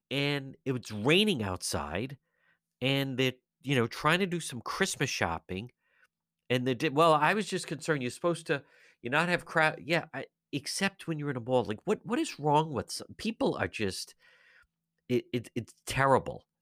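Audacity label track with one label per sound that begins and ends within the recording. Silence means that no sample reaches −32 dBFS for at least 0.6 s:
2.820000	5.610000	sound
6.510000	14.030000	sound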